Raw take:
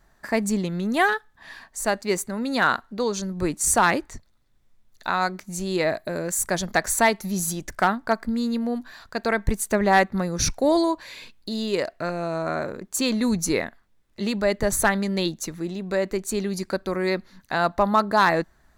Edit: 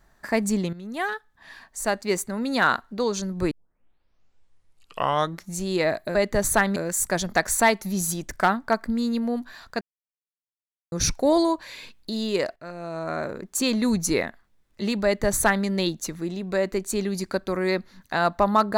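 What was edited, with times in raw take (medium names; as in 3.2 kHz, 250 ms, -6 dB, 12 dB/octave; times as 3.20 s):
0.73–2.55 s: fade in equal-power, from -14 dB
3.51 s: tape start 2.05 s
9.20–10.31 s: mute
11.95–12.76 s: fade in, from -14.5 dB
14.43–15.04 s: copy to 6.15 s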